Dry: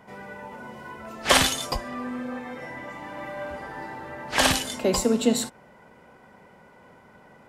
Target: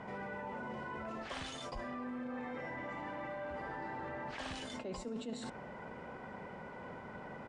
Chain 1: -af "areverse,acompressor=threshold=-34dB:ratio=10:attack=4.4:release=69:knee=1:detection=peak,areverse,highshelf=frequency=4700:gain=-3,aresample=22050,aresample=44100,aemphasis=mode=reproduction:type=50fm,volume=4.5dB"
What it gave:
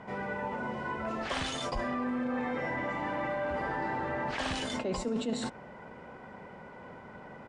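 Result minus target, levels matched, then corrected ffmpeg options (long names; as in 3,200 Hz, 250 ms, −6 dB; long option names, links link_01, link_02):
downward compressor: peak gain reduction −9.5 dB
-af "areverse,acompressor=threshold=-44.5dB:ratio=10:attack=4.4:release=69:knee=1:detection=peak,areverse,highshelf=frequency=4700:gain=-3,aresample=22050,aresample=44100,aemphasis=mode=reproduction:type=50fm,volume=4.5dB"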